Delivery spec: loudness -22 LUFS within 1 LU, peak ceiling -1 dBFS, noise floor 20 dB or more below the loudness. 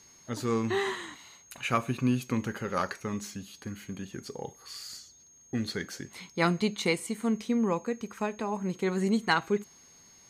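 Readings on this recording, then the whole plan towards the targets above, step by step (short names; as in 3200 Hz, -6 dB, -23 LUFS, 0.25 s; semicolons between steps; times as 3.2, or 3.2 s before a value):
steady tone 6500 Hz; tone level -55 dBFS; loudness -31.5 LUFS; peak -12.0 dBFS; loudness target -22.0 LUFS
-> notch 6500 Hz, Q 30; gain +9.5 dB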